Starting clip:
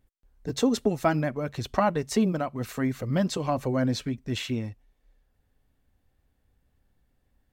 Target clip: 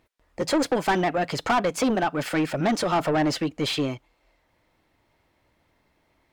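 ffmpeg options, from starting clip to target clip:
ffmpeg -i in.wav -filter_complex "[0:a]asetrate=52479,aresample=44100,asplit=2[link_01][link_02];[link_02]highpass=frequency=720:poles=1,volume=24dB,asoftclip=type=tanh:threshold=-10dB[link_03];[link_01][link_03]amix=inputs=2:normalize=0,lowpass=frequency=2800:poles=1,volume=-6dB,volume=-3.5dB" out.wav

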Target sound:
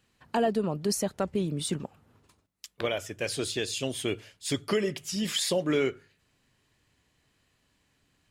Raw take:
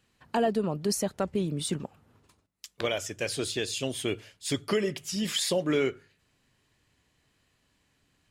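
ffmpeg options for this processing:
ffmpeg -i in.wav -filter_complex "[0:a]asettb=1/sr,asplit=3[link_01][link_02][link_03];[link_01]atrim=end=2.664[link_04];[link_02]atrim=start=2.66:end=3.24,asetpts=PTS-STARTPTS,afade=type=in:duration=0.004:curve=qsin,afade=type=out:start_time=0.576:duration=0.004:curve=qsin,equalizer=frequency=6400:width=0.99:gain=-7.5[link_05];[link_03]atrim=start=3.236[link_06];[link_04][link_05]acrossfade=duration=0.004:curve1=hsin:curve2=qsin[link_07];[link_07][link_06]acrossfade=duration=0.004:curve1=qsin:curve2=hsin" out.wav

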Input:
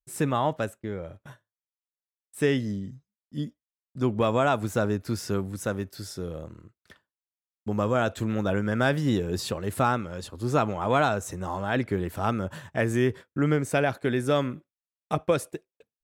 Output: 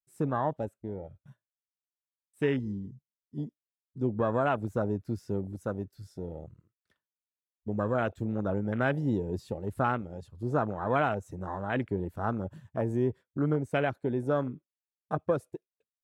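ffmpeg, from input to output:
ffmpeg -i in.wav -af "afwtdn=0.0355,volume=-4dB" out.wav

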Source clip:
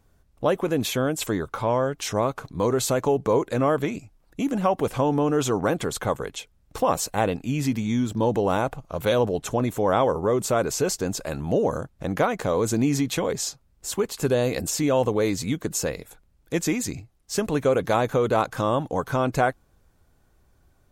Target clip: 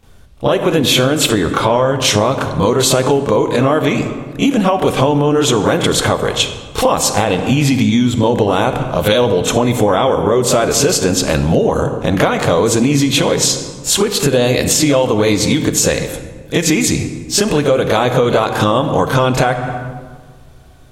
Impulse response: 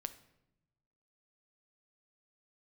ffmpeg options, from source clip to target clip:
-filter_complex "[0:a]asplit=2[link_01][link_02];[1:a]atrim=start_sample=2205,asetrate=22932,aresample=44100,adelay=29[link_03];[link_02][link_03]afir=irnorm=-1:irlink=0,volume=8.5dB[link_04];[link_01][link_04]amix=inputs=2:normalize=0,acompressor=threshold=-16dB:ratio=6,equalizer=frequency=3300:width=1.6:gain=7.5,alimiter=level_in=7.5dB:limit=-1dB:release=50:level=0:latency=1,volume=-1dB"

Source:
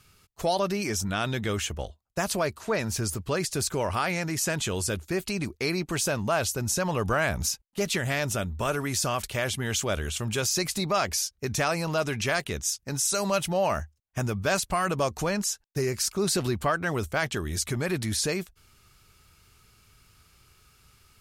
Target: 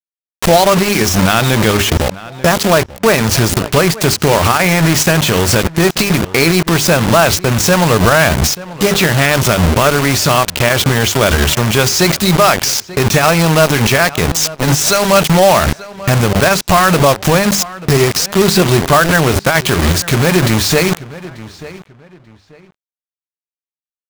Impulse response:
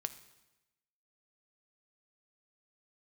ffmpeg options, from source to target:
-filter_complex "[0:a]lowpass=5000,bandreject=frequency=50:width_type=h:width=6,bandreject=frequency=100:width_type=h:width=6,bandreject=frequency=150:width_type=h:width=6,bandreject=frequency=200:width_type=h:width=6,bandreject=frequency=250:width_type=h:width=6,bandreject=frequency=300:width_type=h:width=6,bandreject=frequency=350:width_type=h:width=6,bandreject=frequency=400:width_type=h:width=6,adynamicequalizer=threshold=0.00447:dfrequency=160:dqfactor=5.5:tfrequency=160:tqfactor=5.5:attack=5:release=100:ratio=0.375:range=2.5:mode=boostabove:tftype=bell,asplit=2[link_01][link_02];[link_02]acompressor=threshold=-36dB:ratio=20,volume=2dB[link_03];[link_01][link_03]amix=inputs=2:normalize=0,acrusher=bits=4:mix=0:aa=0.000001,atempo=0.88,acrusher=bits=3:mode=log:mix=0:aa=0.000001,asplit=2[link_04][link_05];[link_05]adelay=887,lowpass=frequency=3300:poles=1,volume=-22.5dB,asplit=2[link_06][link_07];[link_07]adelay=887,lowpass=frequency=3300:poles=1,volume=0.26[link_08];[link_04][link_06][link_08]amix=inputs=3:normalize=0,alimiter=level_in=20.5dB:limit=-1dB:release=50:level=0:latency=1,volume=-1dB"

